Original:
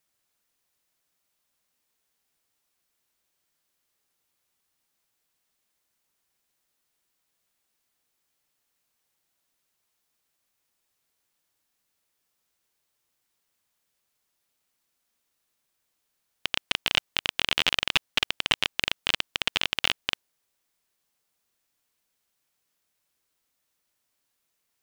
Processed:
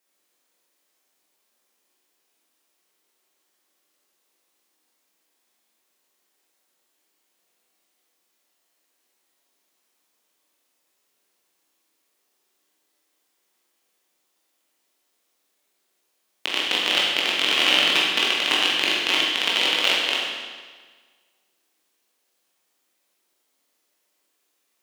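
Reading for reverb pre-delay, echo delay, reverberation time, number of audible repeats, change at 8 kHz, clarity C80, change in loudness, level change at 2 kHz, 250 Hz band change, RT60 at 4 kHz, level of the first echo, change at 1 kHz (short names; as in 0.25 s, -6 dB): 16 ms, none, 1.5 s, none, +6.0 dB, 2.0 dB, +6.5 dB, +6.5 dB, +9.0 dB, 1.4 s, none, +7.0 dB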